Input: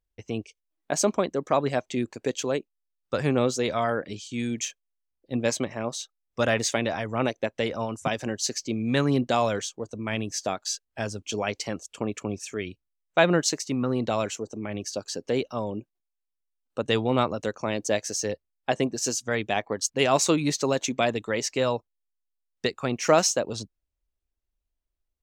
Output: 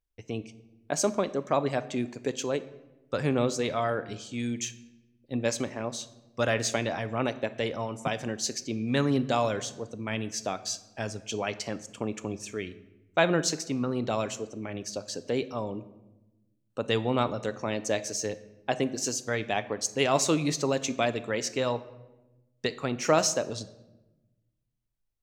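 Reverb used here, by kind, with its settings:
rectangular room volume 490 cubic metres, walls mixed, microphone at 0.3 metres
level −3 dB

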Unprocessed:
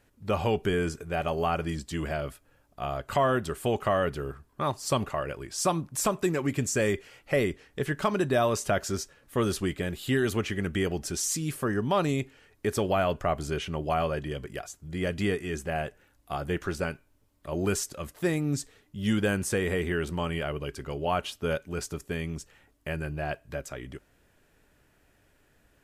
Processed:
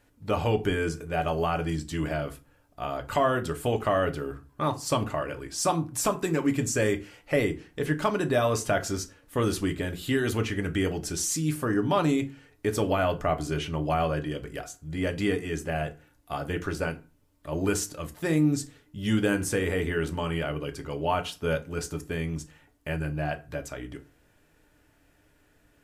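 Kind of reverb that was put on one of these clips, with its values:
feedback delay network reverb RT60 0.32 s, low-frequency decay 1.3×, high-frequency decay 0.7×, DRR 6 dB

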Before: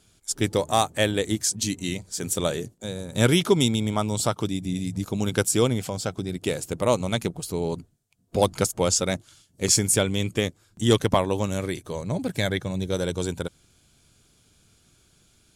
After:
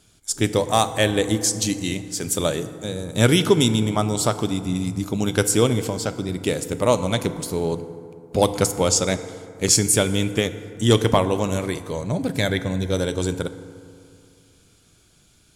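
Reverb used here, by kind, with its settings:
feedback delay network reverb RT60 2.4 s, low-frequency decay 1.05×, high-frequency decay 0.45×, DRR 10.5 dB
level +3 dB

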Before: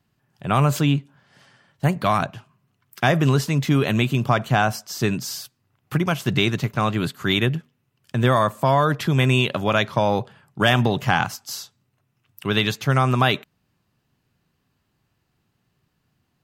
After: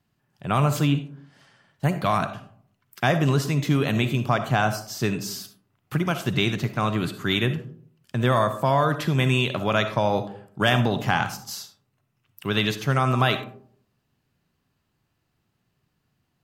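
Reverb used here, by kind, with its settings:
comb and all-pass reverb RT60 0.57 s, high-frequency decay 0.35×, pre-delay 20 ms, DRR 9.5 dB
level −3 dB

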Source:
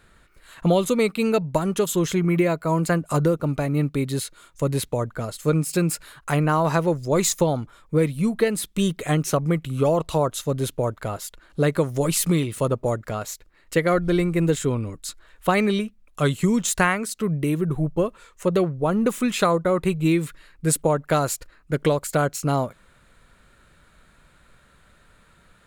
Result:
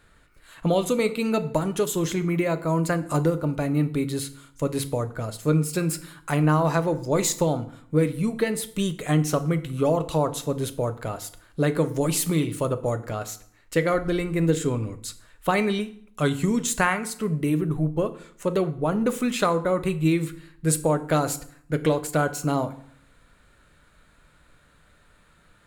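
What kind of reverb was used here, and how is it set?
feedback delay network reverb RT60 0.6 s, low-frequency decay 1.25×, high-frequency decay 0.8×, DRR 9.5 dB
level −2.5 dB

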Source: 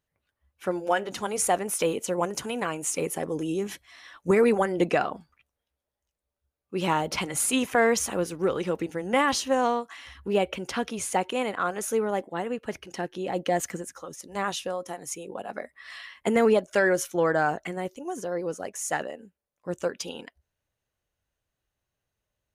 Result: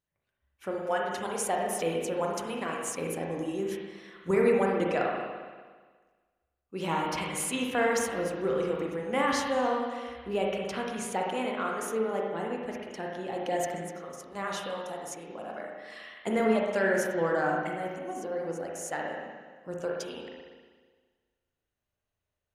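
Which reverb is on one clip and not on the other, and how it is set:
spring reverb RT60 1.5 s, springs 36/59 ms, chirp 70 ms, DRR −1.5 dB
level −7 dB

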